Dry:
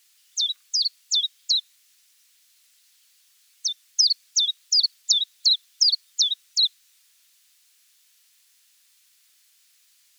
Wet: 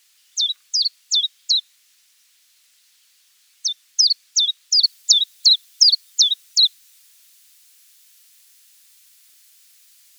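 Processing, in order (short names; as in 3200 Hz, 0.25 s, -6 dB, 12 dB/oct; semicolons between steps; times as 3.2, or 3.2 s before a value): high shelf 7700 Hz -4 dB, from 4.83 s +6 dB; gain +4.5 dB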